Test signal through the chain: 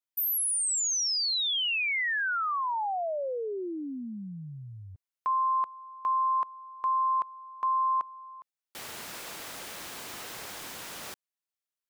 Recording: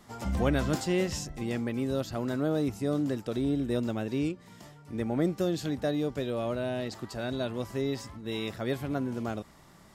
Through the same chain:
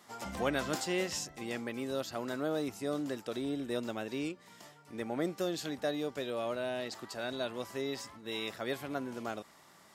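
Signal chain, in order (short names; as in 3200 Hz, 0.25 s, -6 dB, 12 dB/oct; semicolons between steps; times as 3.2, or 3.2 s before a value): HPF 600 Hz 6 dB/oct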